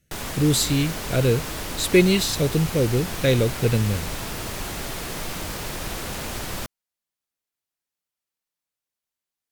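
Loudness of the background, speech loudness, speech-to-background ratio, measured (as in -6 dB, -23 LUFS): -30.5 LUFS, -22.0 LUFS, 8.5 dB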